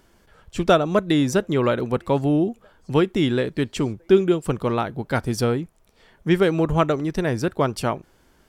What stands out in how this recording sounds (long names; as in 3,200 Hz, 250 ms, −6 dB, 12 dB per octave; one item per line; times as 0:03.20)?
background noise floor −59 dBFS
spectral slope −6.0 dB per octave